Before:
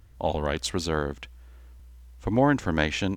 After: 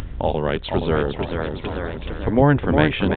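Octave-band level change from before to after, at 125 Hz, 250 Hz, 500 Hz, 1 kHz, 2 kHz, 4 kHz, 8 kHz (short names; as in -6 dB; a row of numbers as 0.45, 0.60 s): +9.0 dB, +6.0 dB, +7.5 dB, +5.5 dB, +4.5 dB, +2.0 dB, under -20 dB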